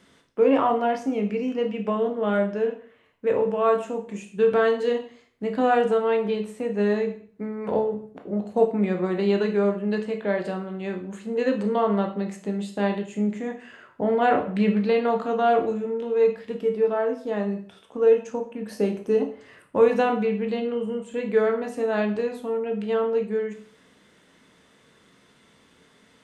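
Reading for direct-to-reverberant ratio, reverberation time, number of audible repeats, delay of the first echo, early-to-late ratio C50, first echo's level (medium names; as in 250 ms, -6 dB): 3.5 dB, 0.50 s, no echo, no echo, 9.5 dB, no echo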